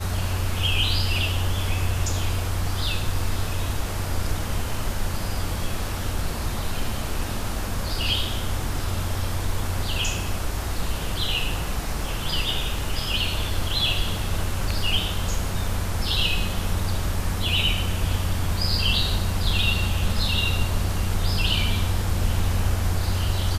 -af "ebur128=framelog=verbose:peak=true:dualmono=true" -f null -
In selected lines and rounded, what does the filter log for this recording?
Integrated loudness:
  I:         -22.5 LUFS
  Threshold: -32.5 LUFS
Loudness range:
  LRA:         5.3 LU
  Threshold: -42.6 LUFS
  LRA low:   -25.6 LUFS
  LRA high:  -20.3 LUFS
True peak:
  Peak:       -8.5 dBFS